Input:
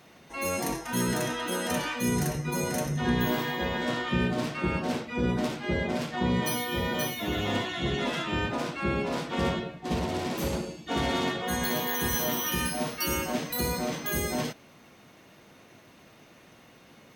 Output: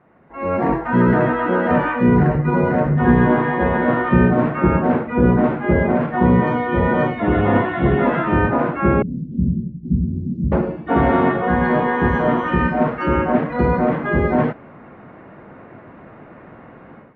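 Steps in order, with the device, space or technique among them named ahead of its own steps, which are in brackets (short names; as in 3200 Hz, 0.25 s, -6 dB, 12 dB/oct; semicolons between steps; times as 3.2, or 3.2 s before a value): 9.02–10.52 elliptic band-stop 210–7000 Hz, stop band 70 dB; action camera in a waterproof case (LPF 1700 Hz 24 dB/oct; AGC gain up to 14.5 dB; AAC 96 kbps 32000 Hz)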